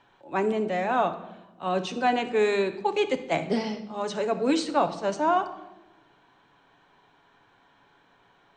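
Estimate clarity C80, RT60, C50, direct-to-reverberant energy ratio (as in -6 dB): 15.0 dB, 1.0 s, 12.0 dB, 7.0 dB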